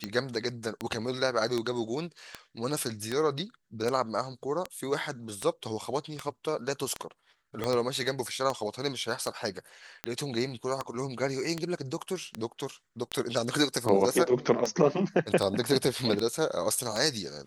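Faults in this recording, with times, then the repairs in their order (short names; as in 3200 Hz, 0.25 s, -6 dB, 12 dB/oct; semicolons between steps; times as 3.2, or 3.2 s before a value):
tick 78 rpm -16 dBFS
7.64 pop -16 dBFS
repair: de-click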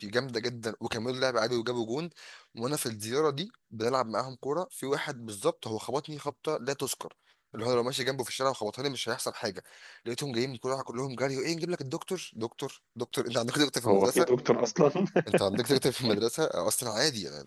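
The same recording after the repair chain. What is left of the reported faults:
7.64 pop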